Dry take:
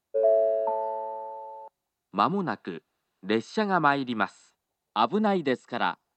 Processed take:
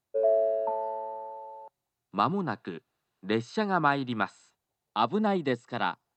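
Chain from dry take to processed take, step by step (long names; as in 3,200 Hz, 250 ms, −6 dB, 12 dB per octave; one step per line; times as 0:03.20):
parametric band 120 Hz +10 dB 0.39 octaves
level −2.5 dB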